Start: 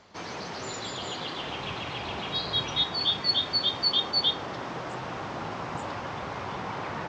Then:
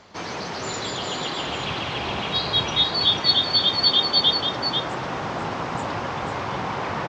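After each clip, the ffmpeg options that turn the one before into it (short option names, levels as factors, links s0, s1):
-af "aecho=1:1:492:0.473,volume=2"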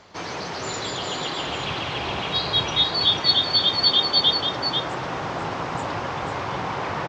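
-af "equalizer=f=220:t=o:w=0.25:g=-5.5"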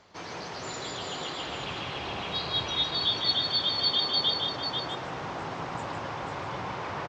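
-af "aecho=1:1:155:0.473,volume=0.398"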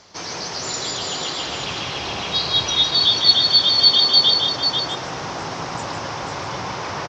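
-af "equalizer=f=5600:w=1.6:g=13,volume=2.11"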